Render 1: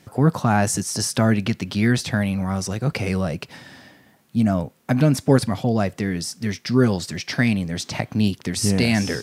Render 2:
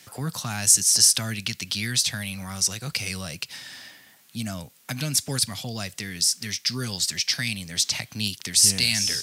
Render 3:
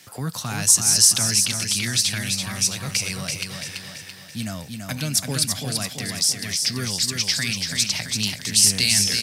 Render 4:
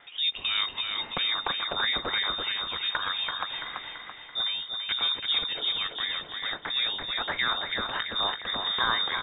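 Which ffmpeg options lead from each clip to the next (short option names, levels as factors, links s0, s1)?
-filter_complex "[0:a]tiltshelf=f=1200:g=-10,acrossover=split=180|3000[s0][s1][s2];[s1]acompressor=threshold=0.00708:ratio=2[s3];[s0][s3][s2]amix=inputs=3:normalize=0"
-af "aecho=1:1:335|670|1005|1340|1675|2010:0.562|0.281|0.141|0.0703|0.0351|0.0176,volume=1.19"
-af "lowpass=f=3200:t=q:w=0.5098,lowpass=f=3200:t=q:w=0.6013,lowpass=f=3200:t=q:w=0.9,lowpass=f=3200:t=q:w=2.563,afreqshift=-3800"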